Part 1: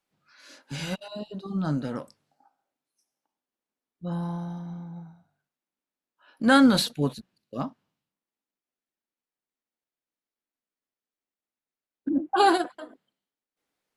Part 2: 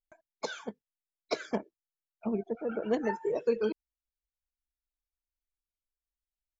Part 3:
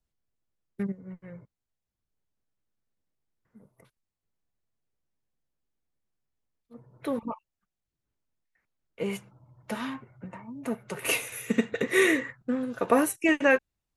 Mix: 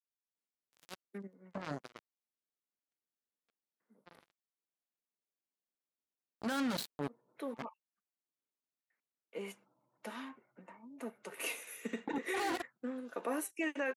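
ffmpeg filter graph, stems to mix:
-filter_complex "[0:a]volume=-3dB[a];[1:a]volume=-11dB[b];[2:a]highpass=f=210:w=0.5412,highpass=f=210:w=1.3066,adelay=350,volume=-10dB[c];[a][b]amix=inputs=2:normalize=0,acrusher=bits=3:mix=0:aa=0.5,acompressor=threshold=-39dB:ratio=1.5,volume=0dB[d];[c][d]amix=inputs=2:normalize=0,highpass=f=160:p=1,alimiter=level_in=3.5dB:limit=-24dB:level=0:latency=1:release=29,volume=-3.5dB"

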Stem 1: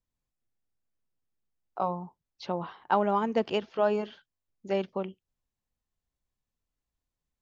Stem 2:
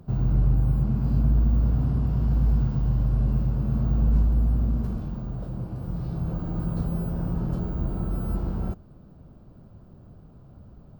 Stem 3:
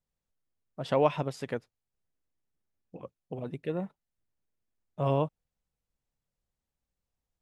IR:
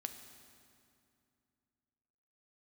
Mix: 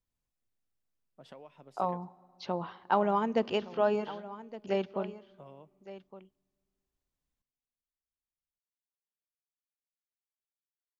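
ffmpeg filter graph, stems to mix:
-filter_complex "[0:a]volume=-3dB,asplit=3[a][b][c];[b]volume=-12.5dB[d];[c]volume=-14.5dB[e];[2:a]highpass=f=150:w=0.5412,highpass=f=150:w=1.3066,acompressor=threshold=-32dB:ratio=10,adelay=400,volume=-16.5dB,asplit=2[f][g];[g]volume=-11.5dB[h];[3:a]atrim=start_sample=2205[i];[d][h]amix=inputs=2:normalize=0[j];[j][i]afir=irnorm=-1:irlink=0[k];[e]aecho=0:1:1165:1[l];[a][f][k][l]amix=inputs=4:normalize=0"

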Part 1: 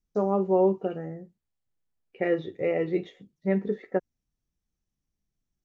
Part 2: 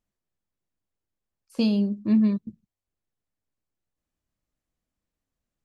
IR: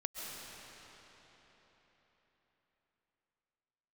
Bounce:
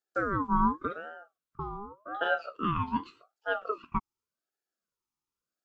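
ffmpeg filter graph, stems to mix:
-filter_complex "[0:a]volume=0.5dB[a];[1:a]lowpass=f=690:t=q:w=5.8,volume=-8.5dB[b];[a][b]amix=inputs=2:normalize=0,highpass=f=280:w=0.5412,highpass=f=280:w=1.3066,equalizer=f=1.1k:t=o:w=0.58:g=-12.5,aeval=exprs='val(0)*sin(2*PI*820*n/s+820*0.3/0.87*sin(2*PI*0.87*n/s))':c=same"

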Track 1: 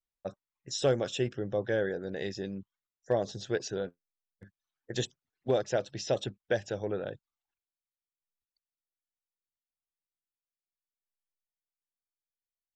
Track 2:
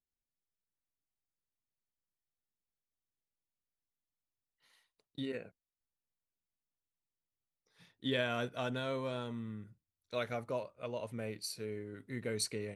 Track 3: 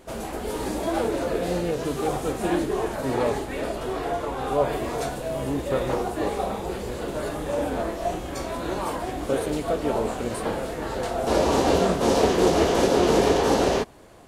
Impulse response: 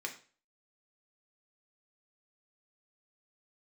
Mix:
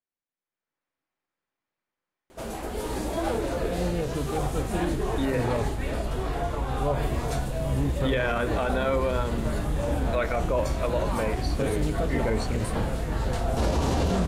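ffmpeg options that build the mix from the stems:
-filter_complex "[1:a]lowpass=1.6k,dynaudnorm=f=140:g=9:m=12dB,aemphasis=mode=production:type=bsi,volume=1dB,asplit=2[a][b];[b]volume=-4.5dB[c];[2:a]asubboost=boost=5:cutoff=160,adelay=2300,volume=-2dB[d];[3:a]atrim=start_sample=2205[e];[c][e]afir=irnorm=-1:irlink=0[f];[a][d][f]amix=inputs=3:normalize=0,alimiter=limit=-16dB:level=0:latency=1:release=33"

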